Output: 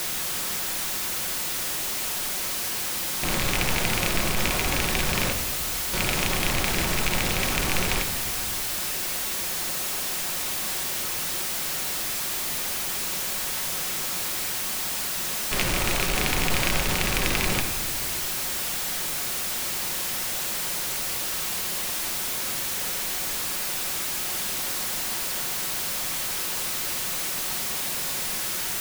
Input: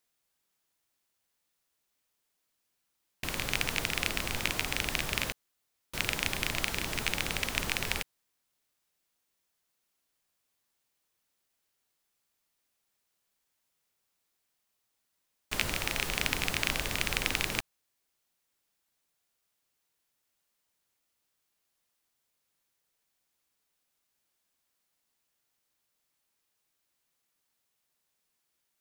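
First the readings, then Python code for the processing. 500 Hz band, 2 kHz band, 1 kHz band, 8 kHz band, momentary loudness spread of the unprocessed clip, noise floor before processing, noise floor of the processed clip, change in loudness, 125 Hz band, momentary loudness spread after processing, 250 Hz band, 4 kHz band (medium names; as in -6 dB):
+11.5 dB, +7.0 dB, +11.5 dB, +16.0 dB, 6 LU, -80 dBFS, -29 dBFS, +6.5 dB, +11.0 dB, 3 LU, +11.5 dB, +9.5 dB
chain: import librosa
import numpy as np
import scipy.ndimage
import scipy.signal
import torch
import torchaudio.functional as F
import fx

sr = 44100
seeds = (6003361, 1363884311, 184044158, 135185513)

y = x + 0.5 * 10.0 ** (-23.0 / 20.0) * np.sign(x)
y = fx.room_shoebox(y, sr, seeds[0], volume_m3=1900.0, walls='mixed', distance_m=1.0)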